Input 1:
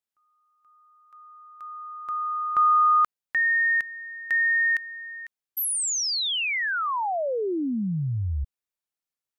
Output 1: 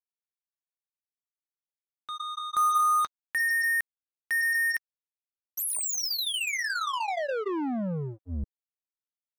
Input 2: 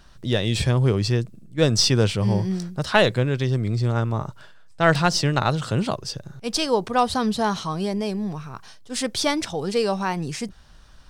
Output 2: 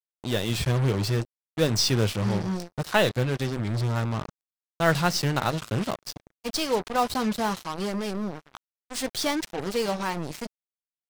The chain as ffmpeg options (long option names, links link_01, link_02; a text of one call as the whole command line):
ffmpeg -i in.wav -af "flanger=delay=3.1:depth=3.2:regen=-81:speed=0.52:shape=sinusoidal,acrusher=bits=4:mix=0:aa=0.5" out.wav